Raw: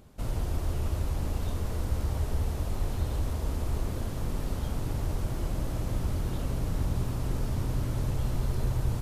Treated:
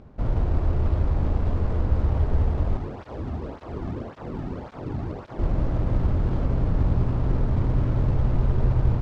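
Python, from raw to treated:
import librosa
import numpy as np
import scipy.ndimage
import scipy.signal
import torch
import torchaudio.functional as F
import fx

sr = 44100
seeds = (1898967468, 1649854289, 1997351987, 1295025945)

y = scipy.ndimage.median_filter(x, 15, mode='constant')
y = fx.air_absorb(y, sr, metres=140.0)
y = fx.flanger_cancel(y, sr, hz=1.8, depth_ms=2.2, at=(2.77, 5.39))
y = y * librosa.db_to_amplitude(7.5)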